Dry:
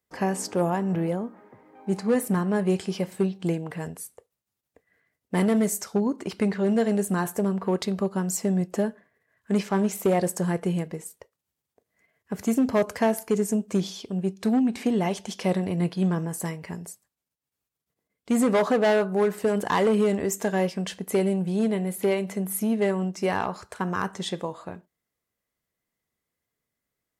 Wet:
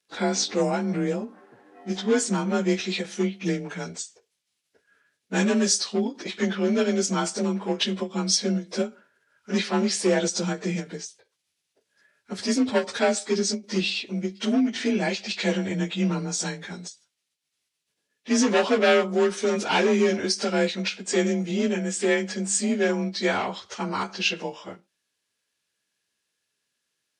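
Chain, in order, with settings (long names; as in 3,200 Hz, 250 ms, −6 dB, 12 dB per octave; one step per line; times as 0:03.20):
partials spread apart or drawn together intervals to 91%
meter weighting curve D
every ending faded ahead of time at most 250 dB per second
level +2.5 dB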